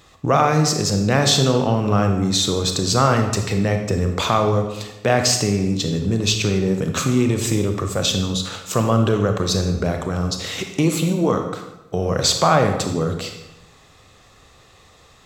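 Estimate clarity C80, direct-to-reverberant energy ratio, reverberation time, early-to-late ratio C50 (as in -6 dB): 9.0 dB, 5.0 dB, 1.0 s, 6.0 dB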